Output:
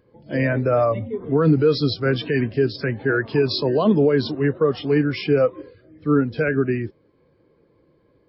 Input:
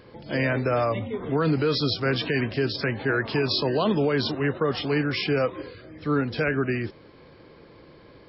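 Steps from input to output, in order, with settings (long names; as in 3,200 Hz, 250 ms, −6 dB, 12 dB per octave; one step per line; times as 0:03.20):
every bin expanded away from the loudest bin 1.5 to 1
level +7.5 dB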